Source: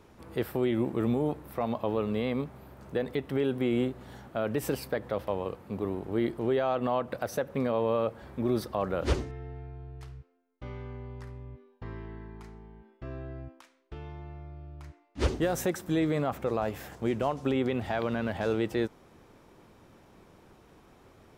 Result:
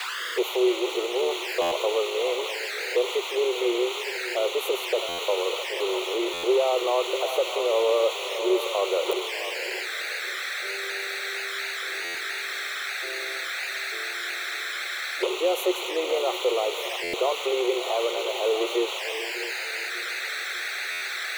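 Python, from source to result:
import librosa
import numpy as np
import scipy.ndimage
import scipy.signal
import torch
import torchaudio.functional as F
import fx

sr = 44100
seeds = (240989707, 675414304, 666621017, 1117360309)

p1 = fx.octave_divider(x, sr, octaves=2, level_db=0.0)
p2 = fx.echo_feedback(p1, sr, ms=591, feedback_pct=45, wet_db=-16.0)
p3 = fx.dmg_noise_band(p2, sr, seeds[0], low_hz=730.0, high_hz=6400.0, level_db=-36.0)
p4 = fx.quant_companded(p3, sr, bits=2)
p5 = p3 + (p4 * 10.0 ** (-11.5 / 20.0))
p6 = scipy.signal.sosfilt(scipy.signal.cheby1(6, 3, 360.0, 'highpass', fs=sr, output='sos'), p5)
p7 = fx.peak_eq(p6, sr, hz=5800.0, db=-13.5, octaves=0.65)
p8 = p7 + fx.echo_banded(p7, sr, ms=655, feedback_pct=54, hz=1700.0, wet_db=-6, dry=0)
p9 = fx.env_flanger(p8, sr, rest_ms=3.5, full_db=-29.5)
p10 = fx.buffer_glitch(p9, sr, at_s=(1.61, 5.08, 6.33, 12.04, 17.03, 20.91), block=512, repeats=8)
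y = p10 * 10.0 ** (7.0 / 20.0)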